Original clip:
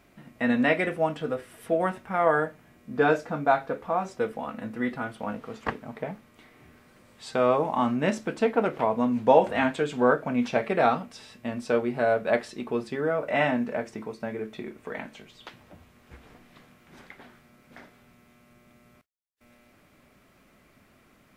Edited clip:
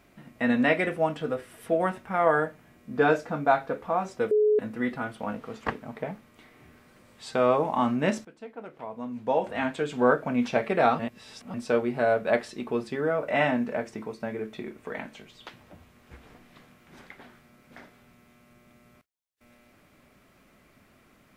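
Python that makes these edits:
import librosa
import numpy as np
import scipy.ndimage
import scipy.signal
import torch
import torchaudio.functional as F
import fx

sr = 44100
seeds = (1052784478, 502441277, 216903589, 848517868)

y = fx.edit(x, sr, fx.bleep(start_s=4.31, length_s=0.28, hz=424.0, db=-18.0),
    fx.fade_in_from(start_s=8.25, length_s=1.82, curve='qua', floor_db=-19.5),
    fx.reverse_span(start_s=10.99, length_s=0.55), tone=tone)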